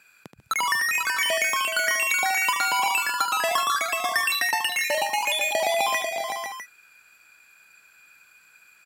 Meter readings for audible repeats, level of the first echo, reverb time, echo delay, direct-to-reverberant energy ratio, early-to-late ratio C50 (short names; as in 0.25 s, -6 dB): 6, -9.0 dB, none, 76 ms, none, none